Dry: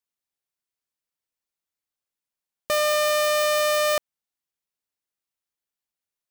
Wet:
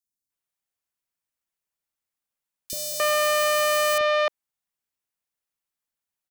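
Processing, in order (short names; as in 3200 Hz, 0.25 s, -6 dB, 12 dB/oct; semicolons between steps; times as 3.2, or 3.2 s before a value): three bands offset in time highs, lows, mids 30/300 ms, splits 380/4300 Hz; gain +1.5 dB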